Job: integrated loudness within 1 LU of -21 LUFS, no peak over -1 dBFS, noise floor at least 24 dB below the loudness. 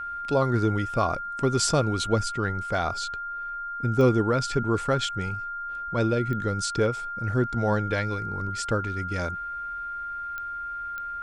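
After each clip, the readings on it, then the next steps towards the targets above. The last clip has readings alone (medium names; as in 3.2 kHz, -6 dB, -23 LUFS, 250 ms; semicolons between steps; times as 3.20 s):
clicks found 4; steady tone 1.4 kHz; tone level -31 dBFS; loudness -27.0 LUFS; peak level -9.0 dBFS; loudness target -21.0 LUFS
-> de-click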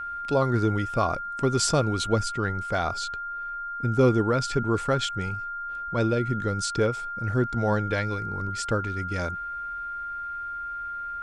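clicks found 0; steady tone 1.4 kHz; tone level -31 dBFS
-> band-stop 1.4 kHz, Q 30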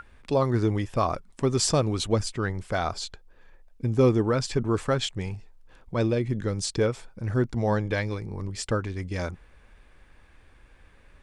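steady tone not found; loudness -27.0 LUFS; peak level -10.0 dBFS; loudness target -21.0 LUFS
-> trim +6 dB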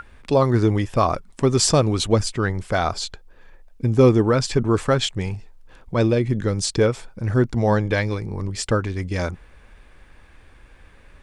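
loudness -21.0 LUFS; peak level -4.0 dBFS; noise floor -50 dBFS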